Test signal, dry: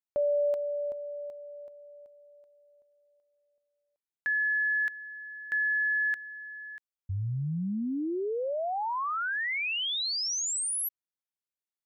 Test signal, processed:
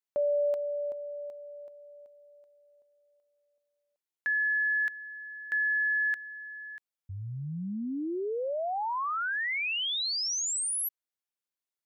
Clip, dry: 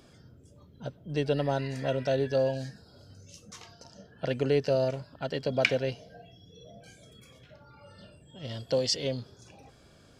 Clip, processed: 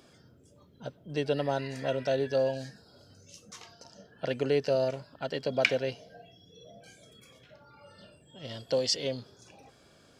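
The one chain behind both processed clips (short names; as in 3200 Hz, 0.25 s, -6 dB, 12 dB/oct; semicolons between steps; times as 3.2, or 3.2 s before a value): low shelf 130 Hz -11 dB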